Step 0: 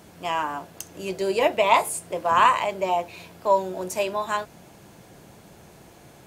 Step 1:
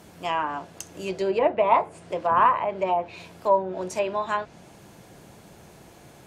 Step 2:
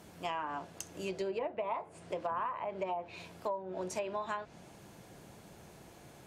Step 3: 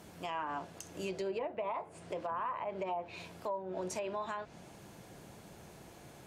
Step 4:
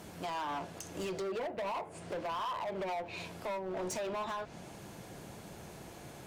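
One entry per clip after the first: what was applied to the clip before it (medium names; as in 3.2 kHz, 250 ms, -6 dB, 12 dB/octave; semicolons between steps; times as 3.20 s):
low-pass that closes with the level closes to 1.4 kHz, closed at -18.5 dBFS
compression 12:1, threshold -27 dBFS, peak gain reduction 14 dB; trim -5.5 dB
peak limiter -29.5 dBFS, peak gain reduction 6 dB; trim +1 dB
hard clipper -38.5 dBFS, distortion -9 dB; trim +4.5 dB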